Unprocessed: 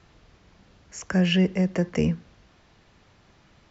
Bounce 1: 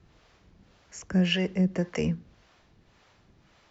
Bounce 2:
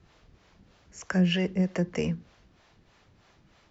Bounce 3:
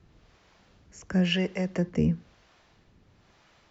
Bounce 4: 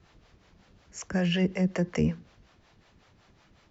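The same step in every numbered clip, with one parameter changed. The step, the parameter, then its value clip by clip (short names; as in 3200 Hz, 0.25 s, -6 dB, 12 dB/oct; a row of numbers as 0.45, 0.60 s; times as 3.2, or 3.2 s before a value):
harmonic tremolo, rate: 1.8, 3.2, 1, 5.4 Hz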